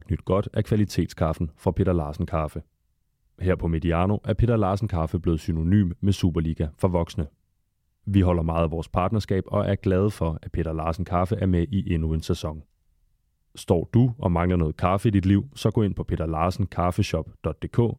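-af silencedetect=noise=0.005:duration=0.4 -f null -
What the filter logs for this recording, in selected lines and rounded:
silence_start: 2.62
silence_end: 3.39 | silence_duration: 0.77
silence_start: 7.29
silence_end: 8.07 | silence_duration: 0.78
silence_start: 12.62
silence_end: 13.55 | silence_duration: 0.93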